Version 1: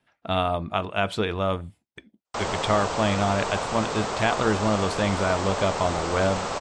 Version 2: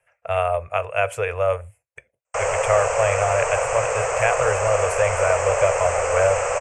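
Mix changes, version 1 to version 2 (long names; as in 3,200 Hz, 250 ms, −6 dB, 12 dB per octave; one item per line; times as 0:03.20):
background +3.0 dB
master: add drawn EQ curve 130 Hz 0 dB, 190 Hz −29 dB, 290 Hz −28 dB, 510 Hz +10 dB, 870 Hz −1 dB, 2,600 Hz +6 dB, 3,800 Hz −22 dB, 6,400 Hz +4 dB, 9,600 Hz +10 dB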